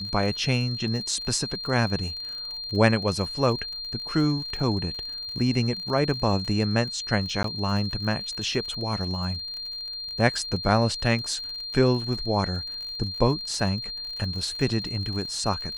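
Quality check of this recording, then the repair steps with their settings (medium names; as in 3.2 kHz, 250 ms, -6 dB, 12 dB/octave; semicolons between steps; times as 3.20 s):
crackle 47 per s -34 dBFS
whine 4.2 kHz -32 dBFS
7.43–7.44 s: dropout 13 ms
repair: de-click; band-stop 4.2 kHz, Q 30; interpolate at 7.43 s, 13 ms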